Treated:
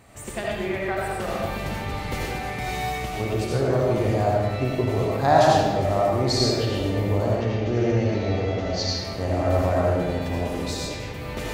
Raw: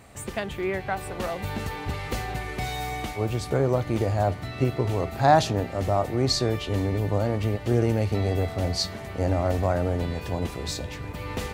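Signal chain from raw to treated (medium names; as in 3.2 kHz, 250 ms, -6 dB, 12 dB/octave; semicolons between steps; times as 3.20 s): 7.26–8.90 s: elliptic low-pass 6.4 kHz, stop band 60 dB; reverberation RT60 1.3 s, pre-delay 40 ms, DRR -4 dB; trim -2.5 dB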